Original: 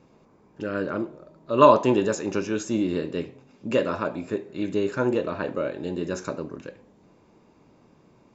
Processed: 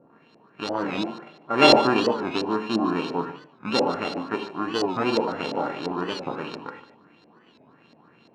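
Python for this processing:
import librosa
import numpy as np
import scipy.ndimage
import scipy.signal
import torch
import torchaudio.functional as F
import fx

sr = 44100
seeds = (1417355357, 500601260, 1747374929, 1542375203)

p1 = np.r_[np.sort(x[:len(x) // 32 * 32].reshape(-1, 32), axis=1).ravel(), x[len(x) // 32 * 32:]]
p2 = scipy.signal.sosfilt(scipy.signal.butter(2, 160.0, 'highpass', fs=sr, output='sos'), p1)
p3 = fx.low_shelf(p2, sr, hz=370.0, db=3.0)
p4 = fx.rev_gated(p3, sr, seeds[0], gate_ms=120, shape='flat', drr_db=4.5)
p5 = fx.dynamic_eq(p4, sr, hz=1900.0, q=0.88, threshold_db=-38.0, ratio=4.0, max_db=-8)
p6 = fx.filter_lfo_lowpass(p5, sr, shape='saw_up', hz=2.9, low_hz=580.0, high_hz=4600.0, q=3.1)
p7 = p6 + fx.echo_single(p6, sr, ms=148, db=-15.5, dry=0)
p8 = fx.record_warp(p7, sr, rpm=45.0, depth_cents=160.0)
y = p8 * 10.0 ** (-1.5 / 20.0)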